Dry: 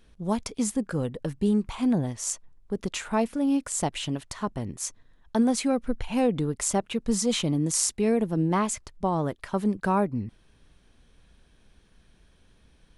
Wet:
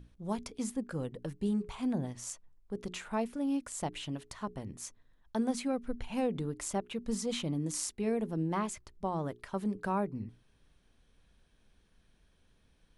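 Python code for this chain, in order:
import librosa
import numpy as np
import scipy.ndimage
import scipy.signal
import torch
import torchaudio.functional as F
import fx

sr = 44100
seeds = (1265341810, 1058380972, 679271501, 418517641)

y = fx.dynamic_eq(x, sr, hz=7300.0, q=0.79, threshold_db=-41.0, ratio=4.0, max_db=-4)
y = fx.add_hum(y, sr, base_hz=60, snr_db=12)
y = fx.hum_notches(y, sr, base_hz=60, count=7)
y = F.gain(torch.from_numpy(y), -8.0).numpy()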